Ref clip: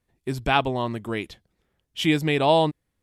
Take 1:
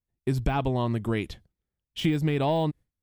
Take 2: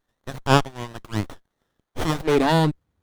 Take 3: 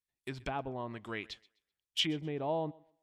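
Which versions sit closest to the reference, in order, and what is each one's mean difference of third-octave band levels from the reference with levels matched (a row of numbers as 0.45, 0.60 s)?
1, 3, 2; 3.5, 5.0, 8.0 dB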